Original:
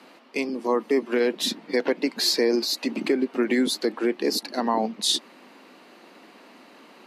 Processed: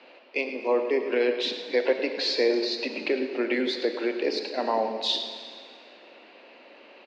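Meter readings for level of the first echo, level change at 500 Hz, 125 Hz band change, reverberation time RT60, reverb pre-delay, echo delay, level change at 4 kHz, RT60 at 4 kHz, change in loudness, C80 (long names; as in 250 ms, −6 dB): −13.0 dB, 0.0 dB, can't be measured, 2.0 s, 7 ms, 107 ms, −3.0 dB, 1.9 s, −2.0 dB, 7.5 dB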